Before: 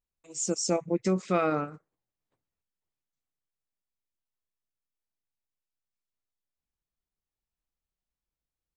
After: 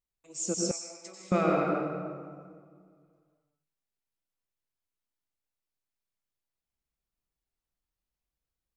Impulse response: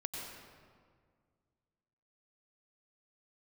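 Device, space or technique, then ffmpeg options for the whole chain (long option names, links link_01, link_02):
stairwell: -filter_complex "[1:a]atrim=start_sample=2205[link_01];[0:a][link_01]afir=irnorm=-1:irlink=0,asettb=1/sr,asplit=3[link_02][link_03][link_04];[link_02]atrim=end=0.714[link_05];[link_03]atrim=start=0.71:end=1.32,asetpts=PTS-STARTPTS,afade=type=in:duration=0.004:curve=qsin,afade=type=out:start_time=0.606:duration=0.004:curve=qsin,aderivative[link_06];[link_04]atrim=start=1.316[link_07];[link_05][link_06]acrossfade=duration=0.004:curve1=hsin:curve2=qsin[link_08];[link_08][link_07]acrossfade=duration=0.004:curve1=qsin:curve2=hsin"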